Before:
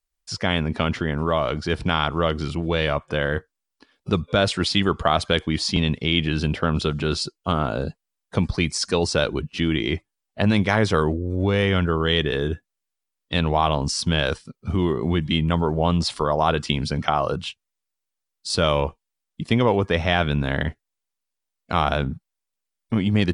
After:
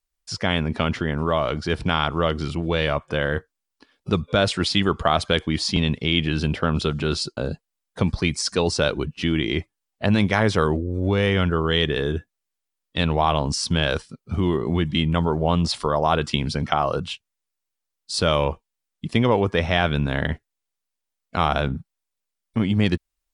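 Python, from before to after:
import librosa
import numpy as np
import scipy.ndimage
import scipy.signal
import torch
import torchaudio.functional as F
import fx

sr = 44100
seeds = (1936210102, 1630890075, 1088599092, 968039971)

y = fx.edit(x, sr, fx.cut(start_s=7.37, length_s=0.36), tone=tone)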